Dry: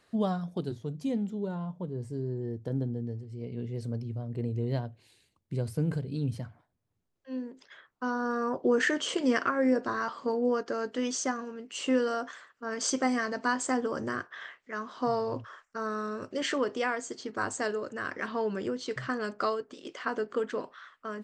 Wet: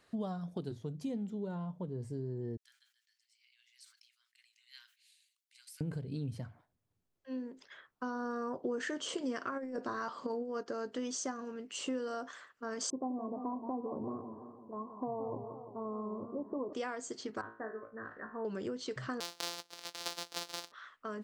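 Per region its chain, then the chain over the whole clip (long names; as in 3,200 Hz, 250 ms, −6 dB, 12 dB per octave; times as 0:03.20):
0:02.57–0:05.81: Bessel high-pass filter 2,900 Hz, order 8 + level that may fall only so fast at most 120 dB per second
0:09.52–0:10.64: low-shelf EQ 66 Hz −9 dB + compressor whose output falls as the input rises −29 dBFS, ratio −0.5
0:12.90–0:16.73: Chebyshev low-pass with heavy ripple 1,100 Hz, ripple 3 dB + feedback echo with a swinging delay time 172 ms, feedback 57%, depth 151 cents, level −11 dB
0:17.41–0:18.45: Chebyshev low-pass filter 1,900 Hz, order 8 + transient designer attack +2 dB, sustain −9 dB + tuned comb filter 56 Hz, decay 0.36 s, mix 90%
0:19.20–0:20.72: samples sorted by size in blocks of 256 samples + high-pass filter 540 Hz + parametric band 4,500 Hz +14 dB 1.6 octaves
whole clip: dynamic equaliser 2,100 Hz, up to −5 dB, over −46 dBFS, Q 1.3; downward compressor 3 to 1, threshold −34 dBFS; level −2 dB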